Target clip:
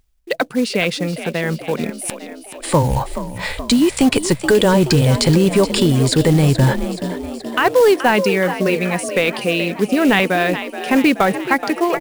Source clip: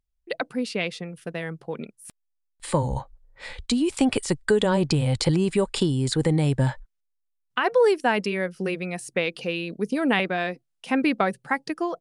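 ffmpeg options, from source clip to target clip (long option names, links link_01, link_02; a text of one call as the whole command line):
ffmpeg -i in.wav -filter_complex "[0:a]areverse,acompressor=mode=upward:threshold=-24dB:ratio=2.5,areverse,asplit=8[link_01][link_02][link_03][link_04][link_05][link_06][link_07][link_08];[link_02]adelay=426,afreqshift=50,volume=-12.5dB[link_09];[link_03]adelay=852,afreqshift=100,volume=-16.7dB[link_10];[link_04]adelay=1278,afreqshift=150,volume=-20.8dB[link_11];[link_05]adelay=1704,afreqshift=200,volume=-25dB[link_12];[link_06]adelay=2130,afreqshift=250,volume=-29.1dB[link_13];[link_07]adelay=2556,afreqshift=300,volume=-33.3dB[link_14];[link_08]adelay=2982,afreqshift=350,volume=-37.4dB[link_15];[link_01][link_09][link_10][link_11][link_12][link_13][link_14][link_15]amix=inputs=8:normalize=0,acrusher=bits=5:mode=log:mix=0:aa=0.000001,apsyclip=15dB,volume=-6dB" out.wav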